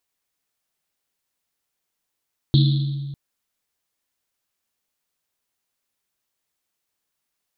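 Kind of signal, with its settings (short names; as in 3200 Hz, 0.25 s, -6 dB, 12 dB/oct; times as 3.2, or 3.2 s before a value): Risset drum length 0.60 s, pitch 140 Hz, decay 2.05 s, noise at 3800 Hz, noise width 970 Hz, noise 15%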